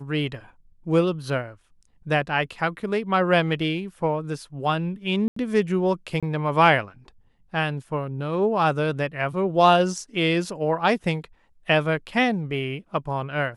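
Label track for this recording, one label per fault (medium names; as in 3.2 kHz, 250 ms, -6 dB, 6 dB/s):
5.280000	5.360000	dropout 84 ms
6.200000	6.230000	dropout 26 ms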